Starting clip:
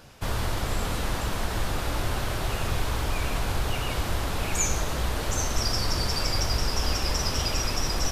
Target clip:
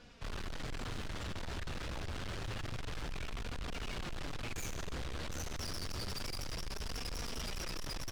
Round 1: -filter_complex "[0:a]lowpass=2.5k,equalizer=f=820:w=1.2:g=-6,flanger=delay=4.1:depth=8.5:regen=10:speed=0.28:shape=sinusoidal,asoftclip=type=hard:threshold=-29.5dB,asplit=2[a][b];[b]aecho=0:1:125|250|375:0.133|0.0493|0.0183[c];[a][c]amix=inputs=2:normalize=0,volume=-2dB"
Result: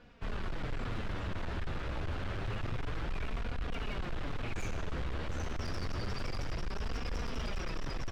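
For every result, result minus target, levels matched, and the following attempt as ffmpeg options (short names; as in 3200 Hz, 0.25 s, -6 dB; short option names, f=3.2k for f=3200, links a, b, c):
4000 Hz band -6.0 dB; hard clip: distortion -4 dB
-filter_complex "[0:a]lowpass=5.3k,equalizer=f=820:w=1.2:g=-6,flanger=delay=4.1:depth=8.5:regen=10:speed=0.28:shape=sinusoidal,asoftclip=type=hard:threshold=-29.5dB,asplit=2[a][b];[b]aecho=0:1:125|250|375:0.133|0.0493|0.0183[c];[a][c]amix=inputs=2:normalize=0,volume=-2dB"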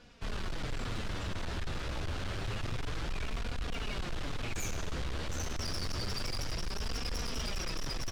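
hard clip: distortion -4 dB
-filter_complex "[0:a]lowpass=5.3k,equalizer=f=820:w=1.2:g=-6,flanger=delay=4.1:depth=8.5:regen=10:speed=0.28:shape=sinusoidal,asoftclip=type=hard:threshold=-36dB,asplit=2[a][b];[b]aecho=0:1:125|250|375:0.133|0.0493|0.0183[c];[a][c]amix=inputs=2:normalize=0,volume=-2dB"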